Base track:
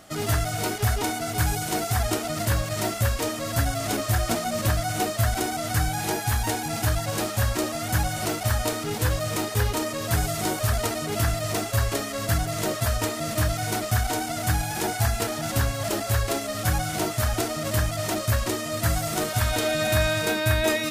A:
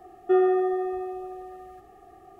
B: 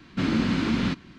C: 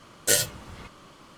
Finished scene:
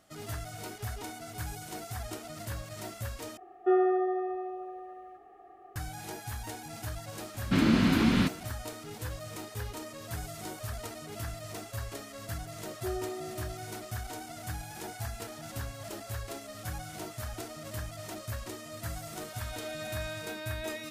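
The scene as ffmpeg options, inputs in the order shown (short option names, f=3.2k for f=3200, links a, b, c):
-filter_complex "[1:a]asplit=2[a][b];[0:a]volume=-14.5dB[c];[a]acrossover=split=300 2800:gain=0.2 1 0.2[d][e][f];[d][e][f]amix=inputs=3:normalize=0[g];[c]asplit=2[h][i];[h]atrim=end=3.374[j];[g]atrim=end=2.39,asetpts=PTS-STARTPTS,volume=-2dB[k];[i]atrim=start=5.756[l];[2:a]atrim=end=1.18,asetpts=PTS-STARTPTS,afade=t=in:d=0.004:c=hsin,afade=t=out:st=1.176:d=0.004:c=hsin,adelay=7340[m];[b]atrim=end=2.39,asetpts=PTS-STARTPTS,volume=-16dB,afade=t=in:d=0.004:c=hsin,afade=t=out:st=2.386:d=0.004:c=hsin,adelay=12540[n];[j][k]acrossfade=d=0.004:c1=hsin:c2=hsin[o];[o][l]acrossfade=d=0.004:c1=hsin:c2=hsin[p];[p][m][n]amix=inputs=3:normalize=0"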